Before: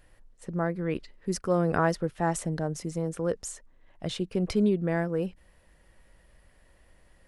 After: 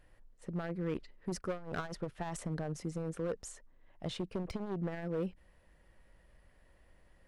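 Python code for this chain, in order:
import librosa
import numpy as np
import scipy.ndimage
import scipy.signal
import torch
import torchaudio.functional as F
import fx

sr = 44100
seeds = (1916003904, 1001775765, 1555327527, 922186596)

y = np.clip(10.0 ** (25.5 / 20.0) * x, -1.0, 1.0) / 10.0 ** (25.5 / 20.0)
y = fx.high_shelf(y, sr, hz=4100.0, db=-7.0)
y = fx.transformer_sat(y, sr, knee_hz=78.0)
y = y * 10.0 ** (-4.0 / 20.0)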